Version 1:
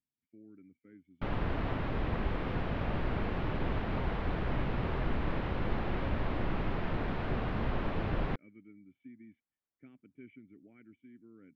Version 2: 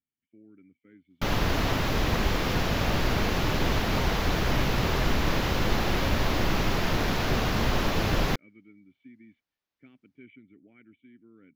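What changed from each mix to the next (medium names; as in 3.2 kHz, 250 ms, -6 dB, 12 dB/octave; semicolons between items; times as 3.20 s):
background +6.5 dB; master: remove distance through air 490 m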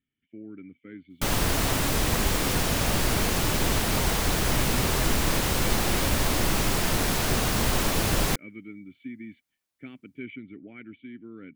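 speech +12.0 dB; master: remove boxcar filter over 5 samples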